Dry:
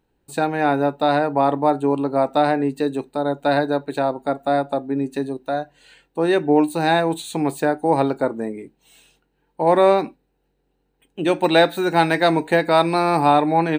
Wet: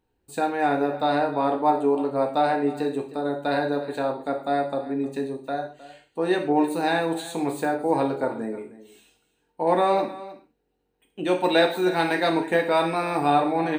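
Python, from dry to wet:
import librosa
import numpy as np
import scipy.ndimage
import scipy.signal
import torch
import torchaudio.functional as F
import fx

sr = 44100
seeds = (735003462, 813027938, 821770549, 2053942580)

y = fx.notch(x, sr, hz=4300.0, q=5.7, at=(12.41, 13.31))
y = y + 10.0 ** (-17.0 / 20.0) * np.pad(y, (int(311 * sr / 1000.0), 0))[:len(y)]
y = fx.rev_gated(y, sr, seeds[0], gate_ms=170, shape='falling', drr_db=3.0)
y = y * 10.0 ** (-6.0 / 20.0)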